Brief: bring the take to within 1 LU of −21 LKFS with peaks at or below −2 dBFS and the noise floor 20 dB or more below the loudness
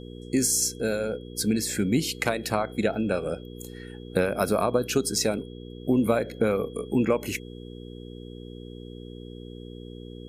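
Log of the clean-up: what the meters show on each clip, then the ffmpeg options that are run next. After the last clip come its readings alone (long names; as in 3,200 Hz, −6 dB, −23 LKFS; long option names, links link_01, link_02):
mains hum 60 Hz; hum harmonics up to 480 Hz; level of the hum −38 dBFS; interfering tone 3,300 Hz; level of the tone −53 dBFS; integrated loudness −26.0 LKFS; sample peak −7.5 dBFS; target loudness −21.0 LKFS
→ -af "bandreject=frequency=60:width_type=h:width=4,bandreject=frequency=120:width_type=h:width=4,bandreject=frequency=180:width_type=h:width=4,bandreject=frequency=240:width_type=h:width=4,bandreject=frequency=300:width_type=h:width=4,bandreject=frequency=360:width_type=h:width=4,bandreject=frequency=420:width_type=h:width=4,bandreject=frequency=480:width_type=h:width=4"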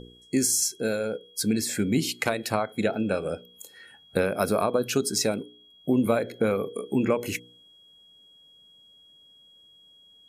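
mains hum none found; interfering tone 3,300 Hz; level of the tone −53 dBFS
→ -af "bandreject=frequency=3300:width=30"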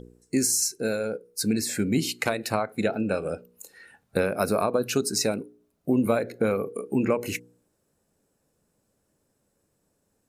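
interfering tone none found; integrated loudness −26.5 LKFS; sample peak −8.0 dBFS; target loudness −21.0 LKFS
→ -af "volume=5.5dB"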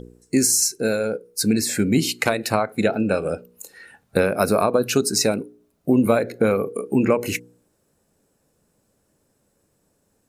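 integrated loudness −21.0 LKFS; sample peak −2.5 dBFS; background noise floor −68 dBFS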